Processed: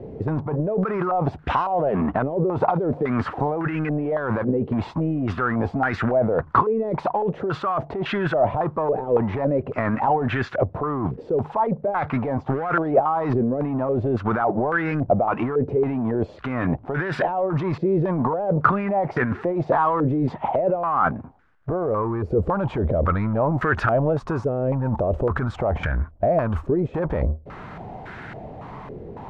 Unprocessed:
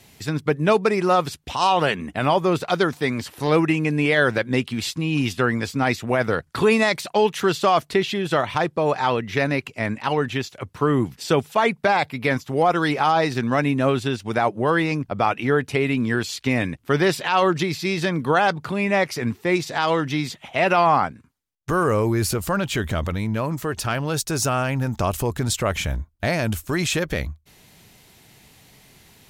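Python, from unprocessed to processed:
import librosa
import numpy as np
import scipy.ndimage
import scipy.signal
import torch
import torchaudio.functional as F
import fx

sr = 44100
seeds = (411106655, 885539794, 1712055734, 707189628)

y = fx.over_compress(x, sr, threshold_db=-28.0, ratio=-1.0)
y = fx.power_curve(y, sr, exponent=0.7)
y = fx.filter_held_lowpass(y, sr, hz=3.6, low_hz=470.0, high_hz=1500.0)
y = F.gain(torch.from_numpy(y), -1.5).numpy()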